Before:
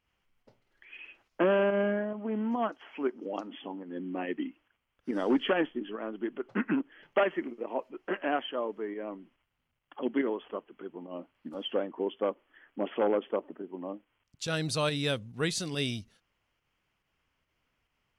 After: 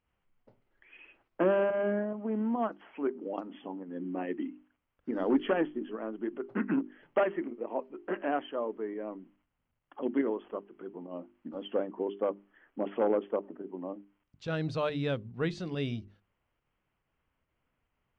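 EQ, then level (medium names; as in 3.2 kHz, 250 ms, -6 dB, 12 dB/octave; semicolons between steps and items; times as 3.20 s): tape spacing loss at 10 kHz 34 dB; hum notches 50/100/150/200/250/300/350/400 Hz; +1.5 dB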